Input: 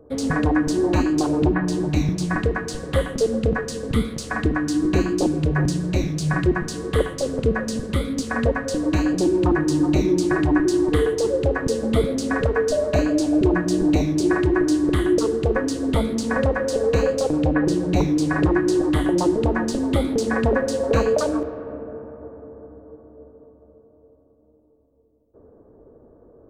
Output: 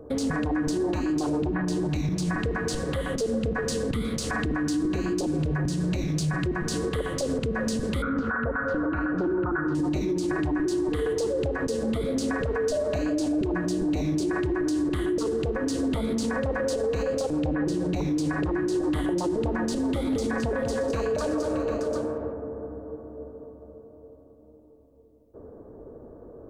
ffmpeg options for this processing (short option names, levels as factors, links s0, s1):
-filter_complex "[0:a]asettb=1/sr,asplit=3[s0][s1][s2];[s0]atrim=end=8.024[s3];[s1]atrim=start=8.02:end=9.75,asetpts=PTS-STARTPTS,afade=t=in:d=0.004:c=qsin,afade=t=out:st=1.726:d=0.004:c=qsin,lowpass=f=1400:t=q:w=15[s4];[s2]atrim=start=9.746[s5];[s3][s4]acrossfade=d=0.004:c1=hsin:c2=qsin[s6];[s6][s5]acrossfade=d=0.004:c1=qsin:c2=hsin,asettb=1/sr,asplit=3[s7][s8][s9];[s7]atrim=end=19.734[s10];[s8]atrim=start=19.73:end=22.33,asetpts=PTS-STARTPTS,afade=t=in:d=0.004:c=qsin,afade=t=out:st=2.596:d=0.004:c=qsin,aecho=1:1:198|217|625|747:0.126|0.376|0.126|0.126,atrim=end_sample=114660[s11];[s9]atrim=start=22.326[s12];[s10][s11]acrossfade=d=0.004:c1=hsin:c2=qsin[s13];[s13][s12]acrossfade=d=0.004:c1=qsin:c2=hsin,acompressor=threshold=0.0631:ratio=2.5,alimiter=level_in=1.06:limit=0.0631:level=0:latency=1:release=68,volume=0.944,volume=1.78"